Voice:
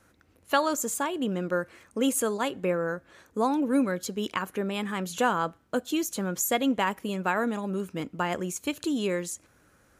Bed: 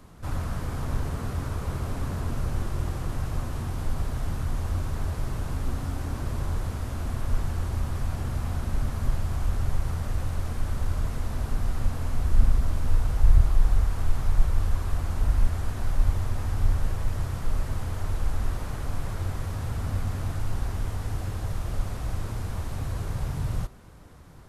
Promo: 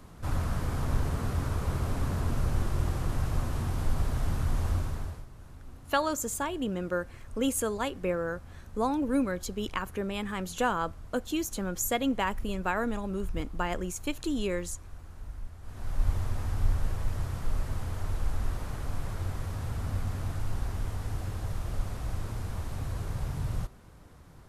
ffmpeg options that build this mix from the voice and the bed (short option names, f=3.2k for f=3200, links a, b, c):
-filter_complex "[0:a]adelay=5400,volume=-3dB[a];[1:a]volume=15dB,afade=t=out:st=4.69:d=0.57:silence=0.11885,afade=t=in:st=15.61:d=0.51:silence=0.177828[b];[a][b]amix=inputs=2:normalize=0"